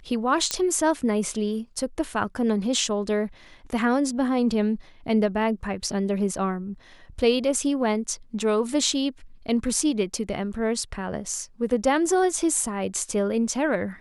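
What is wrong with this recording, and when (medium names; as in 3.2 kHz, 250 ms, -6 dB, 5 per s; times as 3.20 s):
0.51 s: pop -7 dBFS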